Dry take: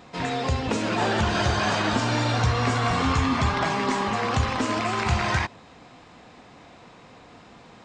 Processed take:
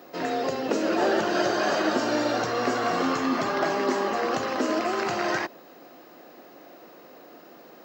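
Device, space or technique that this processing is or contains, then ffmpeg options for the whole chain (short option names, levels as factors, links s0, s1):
old television with a line whistle: -af "highpass=f=200:w=0.5412,highpass=f=200:w=1.3066,equalizer=f=210:t=q:w=4:g=-6,equalizer=f=350:t=q:w=4:g=7,equalizer=f=580:t=q:w=4:g=6,equalizer=f=970:t=q:w=4:g=-6,equalizer=f=2300:t=q:w=4:g=-7,equalizer=f=3500:t=q:w=4:g=-8,lowpass=f=6700:w=0.5412,lowpass=f=6700:w=1.3066,aeval=exprs='val(0)+0.00158*sin(2*PI*15625*n/s)':c=same"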